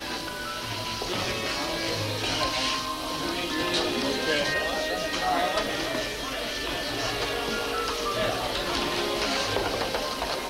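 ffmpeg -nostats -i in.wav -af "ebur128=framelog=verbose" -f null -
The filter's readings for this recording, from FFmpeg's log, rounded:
Integrated loudness:
  I:         -27.2 LUFS
  Threshold: -37.2 LUFS
Loudness range:
  LRA:         1.6 LU
  Threshold: -47.0 LUFS
  LRA low:   -27.9 LUFS
  LRA high:  -26.3 LUFS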